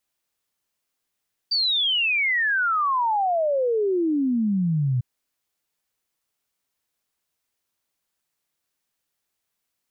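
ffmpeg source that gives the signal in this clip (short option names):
-f lavfi -i "aevalsrc='0.112*clip(min(t,3.5-t)/0.01,0,1)*sin(2*PI*4700*3.5/log(120/4700)*(exp(log(120/4700)*t/3.5)-1))':d=3.5:s=44100"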